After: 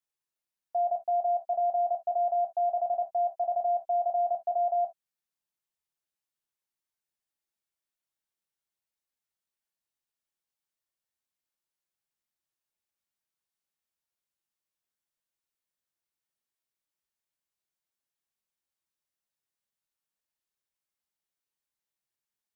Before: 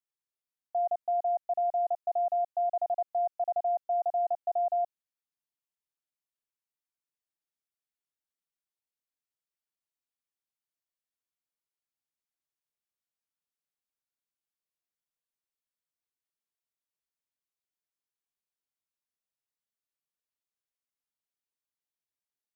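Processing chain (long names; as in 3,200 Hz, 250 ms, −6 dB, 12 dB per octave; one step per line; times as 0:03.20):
reverb whose tail is shaped and stops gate 90 ms falling, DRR 3 dB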